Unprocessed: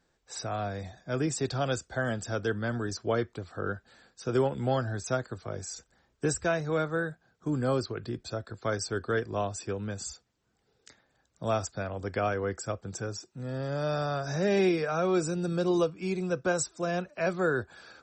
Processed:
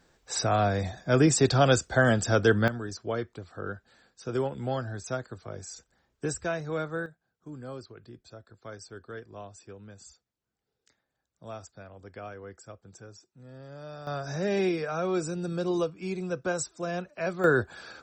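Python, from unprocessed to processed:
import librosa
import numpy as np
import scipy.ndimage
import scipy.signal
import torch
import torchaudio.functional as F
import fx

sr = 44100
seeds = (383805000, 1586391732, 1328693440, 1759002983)

y = fx.gain(x, sr, db=fx.steps((0.0, 8.5), (2.68, -3.0), (7.06, -12.5), (14.07, -2.0), (17.44, 5.5)))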